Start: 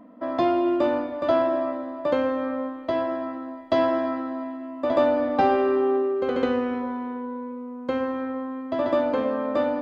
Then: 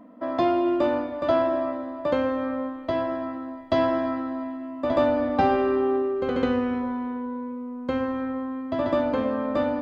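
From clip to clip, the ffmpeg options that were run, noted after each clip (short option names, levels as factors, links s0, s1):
-af "asubboost=boost=2.5:cutoff=210"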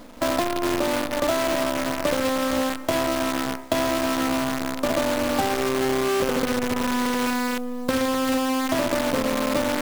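-af "acompressor=threshold=0.0398:ratio=16,acrusher=bits=6:dc=4:mix=0:aa=0.000001,volume=2.51"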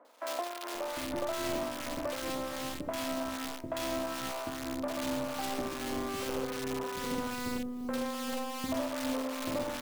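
-filter_complex "[0:a]acrossover=split=1200[s0][s1];[s0]aeval=exprs='val(0)*(1-0.5/2+0.5/2*cos(2*PI*2.5*n/s))':c=same[s2];[s1]aeval=exprs='val(0)*(1-0.5/2-0.5/2*cos(2*PI*2.5*n/s))':c=same[s3];[s2][s3]amix=inputs=2:normalize=0,acrossover=split=420|1800[s4][s5][s6];[s6]adelay=50[s7];[s4]adelay=750[s8];[s8][s5][s7]amix=inputs=3:normalize=0,volume=0.398"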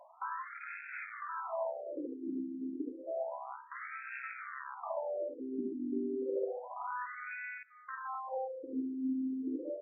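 -af "alimiter=level_in=1.33:limit=0.0631:level=0:latency=1:release=242,volume=0.75,afftfilt=real='re*between(b*sr/1024,270*pow(1900/270,0.5+0.5*sin(2*PI*0.3*pts/sr))/1.41,270*pow(1900/270,0.5+0.5*sin(2*PI*0.3*pts/sr))*1.41)':imag='im*between(b*sr/1024,270*pow(1900/270,0.5+0.5*sin(2*PI*0.3*pts/sr))/1.41,270*pow(1900/270,0.5+0.5*sin(2*PI*0.3*pts/sr))*1.41)':win_size=1024:overlap=0.75,volume=1.78"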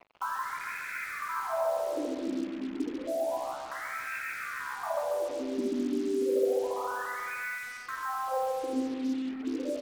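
-af "aecho=1:1:140|280|420|560|700|840|980:0.596|0.322|0.174|0.0938|0.0506|0.0274|0.0148,acrusher=bits=7:mix=0:aa=0.5,volume=1.88"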